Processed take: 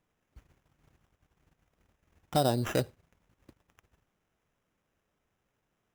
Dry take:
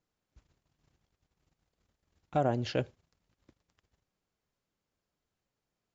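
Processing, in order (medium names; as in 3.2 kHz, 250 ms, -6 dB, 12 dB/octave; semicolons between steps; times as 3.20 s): in parallel at +1.5 dB: compression, threshold -39 dBFS, peak gain reduction 14.5 dB; on the sum: sample-rate reducer 4.4 kHz, jitter 0%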